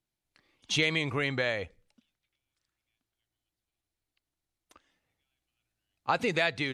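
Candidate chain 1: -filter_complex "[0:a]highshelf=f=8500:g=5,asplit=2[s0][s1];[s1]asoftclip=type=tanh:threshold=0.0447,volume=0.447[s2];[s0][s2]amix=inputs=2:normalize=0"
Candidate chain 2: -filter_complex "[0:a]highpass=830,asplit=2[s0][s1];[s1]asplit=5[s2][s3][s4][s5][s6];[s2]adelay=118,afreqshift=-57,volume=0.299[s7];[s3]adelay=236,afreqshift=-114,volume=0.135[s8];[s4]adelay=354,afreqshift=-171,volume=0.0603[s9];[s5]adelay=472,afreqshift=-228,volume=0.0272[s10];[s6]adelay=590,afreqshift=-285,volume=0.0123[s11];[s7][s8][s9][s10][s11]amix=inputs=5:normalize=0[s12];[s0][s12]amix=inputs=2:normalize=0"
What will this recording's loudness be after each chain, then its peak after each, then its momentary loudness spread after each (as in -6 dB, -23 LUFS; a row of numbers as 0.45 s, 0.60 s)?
-27.0 LUFS, -30.5 LUFS; -11.0 dBFS, -14.0 dBFS; 10 LU, 10 LU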